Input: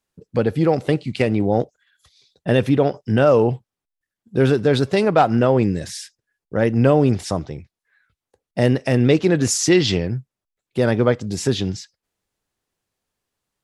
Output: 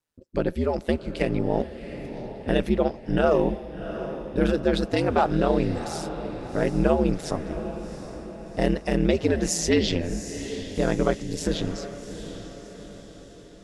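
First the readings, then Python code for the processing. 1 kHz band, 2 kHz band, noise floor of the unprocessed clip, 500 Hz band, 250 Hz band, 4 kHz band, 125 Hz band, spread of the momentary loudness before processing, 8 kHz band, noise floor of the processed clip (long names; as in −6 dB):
−5.5 dB, −5.5 dB, below −85 dBFS, −6.0 dB, −5.5 dB, −5.5 dB, −9.0 dB, 14 LU, −6.0 dB, −46 dBFS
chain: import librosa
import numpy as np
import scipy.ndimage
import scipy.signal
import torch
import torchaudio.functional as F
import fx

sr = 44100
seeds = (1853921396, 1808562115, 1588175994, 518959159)

y = x * np.sin(2.0 * np.pi * 80.0 * np.arange(len(x)) / sr)
y = fx.echo_diffused(y, sr, ms=737, feedback_pct=50, wet_db=-11)
y = y * 10.0 ** (-3.0 / 20.0)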